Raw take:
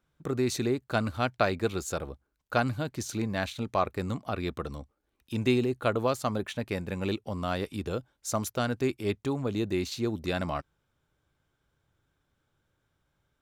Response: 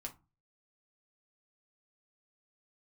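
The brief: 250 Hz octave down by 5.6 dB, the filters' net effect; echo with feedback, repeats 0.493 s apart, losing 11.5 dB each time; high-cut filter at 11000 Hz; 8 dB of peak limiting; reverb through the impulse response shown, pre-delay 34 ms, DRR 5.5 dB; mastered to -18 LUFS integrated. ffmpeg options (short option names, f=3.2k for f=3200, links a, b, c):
-filter_complex "[0:a]lowpass=11k,equalizer=f=250:t=o:g=-7.5,alimiter=limit=-19.5dB:level=0:latency=1,aecho=1:1:493|986|1479:0.266|0.0718|0.0194,asplit=2[a][b];[1:a]atrim=start_sample=2205,adelay=34[c];[b][c]afir=irnorm=-1:irlink=0,volume=-2.5dB[d];[a][d]amix=inputs=2:normalize=0,volume=15dB"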